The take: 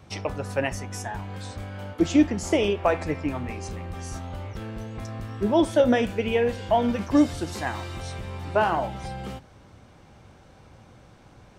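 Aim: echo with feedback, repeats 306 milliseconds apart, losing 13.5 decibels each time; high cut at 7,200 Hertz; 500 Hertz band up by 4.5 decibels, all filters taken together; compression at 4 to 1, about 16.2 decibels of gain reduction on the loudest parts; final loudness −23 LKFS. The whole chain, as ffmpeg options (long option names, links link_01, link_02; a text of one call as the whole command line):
ffmpeg -i in.wav -af "lowpass=7200,equalizer=frequency=500:width_type=o:gain=5.5,acompressor=threshold=-31dB:ratio=4,aecho=1:1:306|612:0.211|0.0444,volume=11.5dB" out.wav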